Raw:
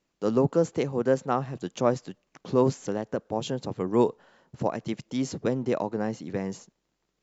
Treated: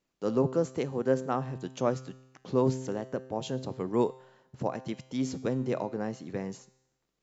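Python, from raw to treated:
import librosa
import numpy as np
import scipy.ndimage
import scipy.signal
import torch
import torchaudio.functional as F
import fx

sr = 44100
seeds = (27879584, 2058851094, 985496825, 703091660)

y = fx.comb_fb(x, sr, f0_hz=130.0, decay_s=0.94, harmonics='all', damping=0.0, mix_pct=60)
y = y * librosa.db_to_amplitude(3.0)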